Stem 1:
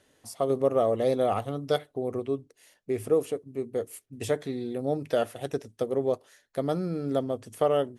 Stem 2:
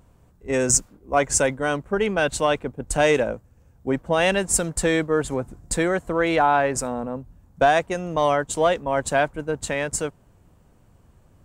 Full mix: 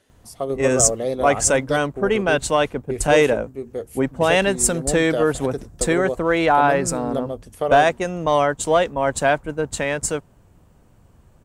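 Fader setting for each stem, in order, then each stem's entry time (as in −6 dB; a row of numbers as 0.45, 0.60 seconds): +1.0, +2.5 decibels; 0.00, 0.10 seconds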